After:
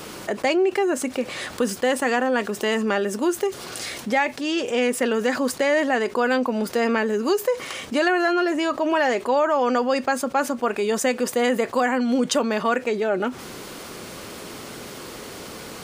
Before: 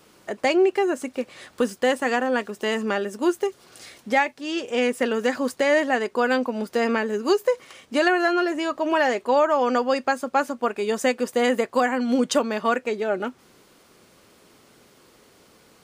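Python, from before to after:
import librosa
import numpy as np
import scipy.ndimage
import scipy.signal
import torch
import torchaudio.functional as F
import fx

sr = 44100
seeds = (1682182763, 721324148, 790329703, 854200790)

y = fx.env_flatten(x, sr, amount_pct=50)
y = y * librosa.db_to_amplitude(-2.0)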